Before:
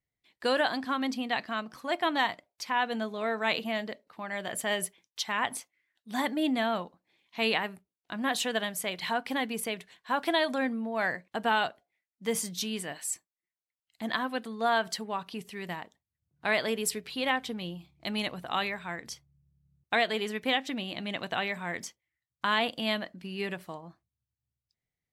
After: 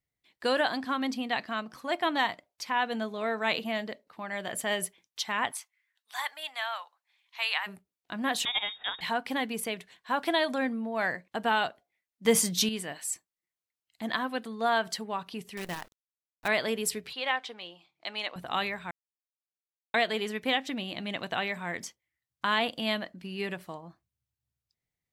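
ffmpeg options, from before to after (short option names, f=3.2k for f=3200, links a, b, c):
-filter_complex "[0:a]asplit=3[a][b][c];[a]afade=t=out:st=5.5:d=0.02[d];[b]highpass=f=900:w=0.5412,highpass=f=900:w=1.3066,afade=t=in:st=5.5:d=0.02,afade=t=out:st=7.66:d=0.02[e];[c]afade=t=in:st=7.66:d=0.02[f];[d][e][f]amix=inputs=3:normalize=0,asettb=1/sr,asplit=3[g][h][i];[g]atrim=end=8.454[j];[h]atrim=start=8.45:end=9.01,asetpts=PTS-STARTPTS,afade=t=in:d=0.004:c=qsin,afade=t=out:st=0.556:d=0.004:c=qsin,lowpass=f=3.3k:t=q:w=0.5098,lowpass=f=3.3k:t=q:w=0.6013,lowpass=f=3.3k:t=q:w=0.9,lowpass=f=3.3k:t=q:w=2.563,afreqshift=-3900[k];[i]atrim=start=9.006[l];[j][k]acrossfade=d=0.004:c1=hsin:c2=qsin[m];[m][l]acrossfade=d=0.004:c1=qsin:c2=hsin,asettb=1/sr,asplit=3[n][o][p];[n]atrim=end=12.254[q];[o]atrim=start=12.25:end=12.69,asetpts=PTS-STARTPTS,afade=t=in:d=0.004:c=qsin,afade=t=out:st=0.436:d=0.004:c=qsin,acontrast=89[r];[p]atrim=start=12.686[s];[q][r]acrossfade=d=0.004:c1=hsin:c2=qsin[t];[t][s]acrossfade=d=0.004:c1=qsin:c2=hsin,asettb=1/sr,asplit=3[u][v][w];[u]atrim=end=15.574[x];[v]atrim=start=15.57:end=16.48,asetpts=PTS-STARTPTS,afade=t=in:d=0.004:c=qsin,afade=t=out:st=0.906:d=0.004:c=qsin,acrusher=bits=7:dc=4:mix=0:aa=0.000001[y];[w]atrim=start=16.476[z];[x][y]acrossfade=d=0.004:c1=hsin:c2=qsin[aa];[aa][z]acrossfade=d=0.004:c1=qsin:c2=hsin,asettb=1/sr,asplit=3[ab][ac][ad];[ab]atrim=end=17.134[ae];[ac]atrim=start=17.13:end=18.36,asetpts=PTS-STARTPTS,afade=t=in:d=0.004:c=qsin,afade=t=out:st=1.226:d=0.004:c=qsin,highpass=580,lowpass=5.7k[af];[ad]atrim=start=18.356[ag];[ae][af]acrossfade=d=0.004:c1=hsin:c2=qsin[ah];[ah][ag]acrossfade=d=0.004:c1=qsin:c2=hsin,asplit=3[ai][aj][ak];[ai]atrim=end=18.91,asetpts=PTS-STARTPTS,afade=t=out:st=18.906:d=0.004:c=hsin[al];[aj]atrim=start=18.91:end=19.94,asetpts=PTS-STARTPTS,volume=0[am];[ak]atrim=start=19.94,asetpts=PTS-STARTPTS,afade=t=in:d=0.004:c=hsin[an];[al][am][an]concat=n=3:v=0:a=1"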